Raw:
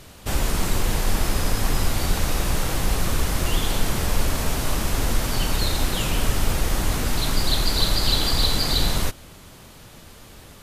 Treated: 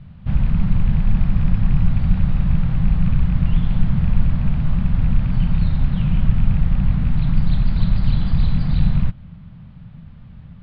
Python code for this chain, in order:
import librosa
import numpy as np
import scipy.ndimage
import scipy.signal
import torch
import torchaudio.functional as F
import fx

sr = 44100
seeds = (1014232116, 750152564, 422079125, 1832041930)

y = fx.rattle_buzz(x, sr, strikes_db=-20.0, level_db=-19.0)
y = scipy.signal.sosfilt(scipy.signal.bessel(8, 2200.0, 'lowpass', norm='mag', fs=sr, output='sos'), y)
y = fx.low_shelf_res(y, sr, hz=250.0, db=13.5, q=3.0)
y = F.gain(torch.from_numpy(y), -8.0).numpy()